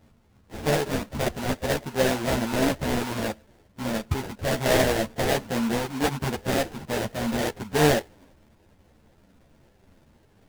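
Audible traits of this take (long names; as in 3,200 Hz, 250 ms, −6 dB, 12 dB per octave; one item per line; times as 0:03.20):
aliases and images of a low sample rate 1,200 Hz, jitter 20%
a shimmering, thickened sound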